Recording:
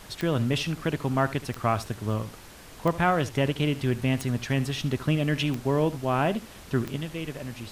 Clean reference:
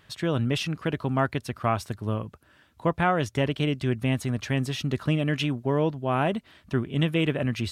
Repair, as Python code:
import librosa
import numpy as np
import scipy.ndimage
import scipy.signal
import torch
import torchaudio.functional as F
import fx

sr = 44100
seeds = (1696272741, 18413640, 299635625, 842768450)

y = fx.fix_declick_ar(x, sr, threshold=10.0)
y = fx.noise_reduce(y, sr, print_start_s=2.29, print_end_s=2.79, reduce_db=11.0)
y = fx.fix_echo_inverse(y, sr, delay_ms=73, level_db=-16.5)
y = fx.fix_level(y, sr, at_s=6.96, step_db=10.0)